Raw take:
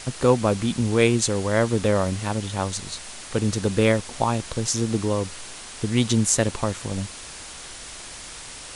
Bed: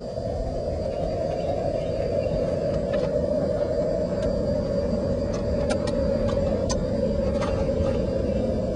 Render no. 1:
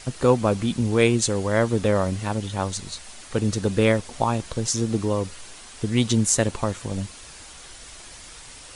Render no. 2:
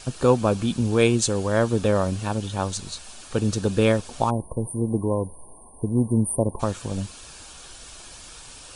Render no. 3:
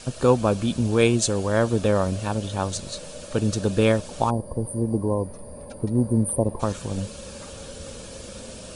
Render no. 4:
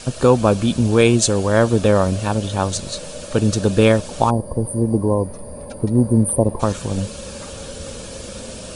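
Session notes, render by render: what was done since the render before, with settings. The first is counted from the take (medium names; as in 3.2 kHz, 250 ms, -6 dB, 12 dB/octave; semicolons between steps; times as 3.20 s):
noise reduction 6 dB, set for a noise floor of -39 dBFS
4.30–6.60 s: spectral selection erased 1.1–8.6 kHz; band-stop 2 kHz, Q 5.1
add bed -16.5 dB
trim +6 dB; peak limiter -1 dBFS, peak gain reduction 2 dB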